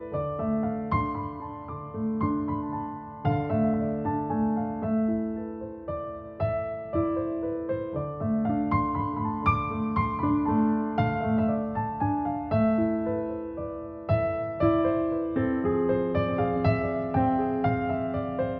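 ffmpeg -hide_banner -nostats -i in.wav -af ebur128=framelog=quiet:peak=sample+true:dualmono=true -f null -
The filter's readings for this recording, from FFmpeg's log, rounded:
Integrated loudness:
  I:         -24.7 LUFS
  Threshold: -34.8 LUFS
Loudness range:
  LRA:         3.9 LU
  Threshold: -44.7 LUFS
  LRA low:   -27.1 LUFS
  LRA high:  -23.2 LUFS
Sample peak:
  Peak:       -9.9 dBFS
True peak:
  Peak:       -9.9 dBFS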